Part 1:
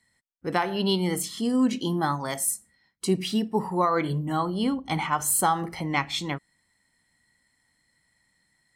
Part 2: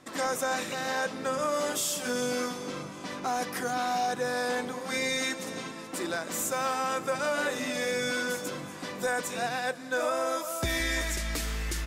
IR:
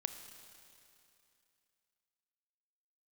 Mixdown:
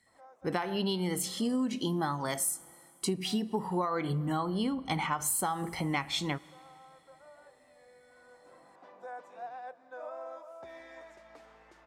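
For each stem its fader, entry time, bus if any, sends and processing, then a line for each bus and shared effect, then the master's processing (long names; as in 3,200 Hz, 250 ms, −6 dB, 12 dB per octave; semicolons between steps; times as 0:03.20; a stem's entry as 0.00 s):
−2.5 dB, 0.00 s, send −13.5 dB, no processing
0:08.11 −21 dB → 0:08.71 −8.5 dB, 0.00 s, no send, resonant band-pass 760 Hz, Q 2.3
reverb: on, RT60 2.7 s, pre-delay 26 ms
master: downward compressor 12 to 1, threshold −27 dBFS, peak gain reduction 9.5 dB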